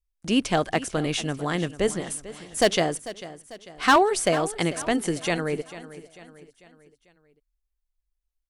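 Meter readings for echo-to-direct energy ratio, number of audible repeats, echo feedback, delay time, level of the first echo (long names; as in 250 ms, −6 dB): −15.0 dB, 3, 48%, 445 ms, −16.0 dB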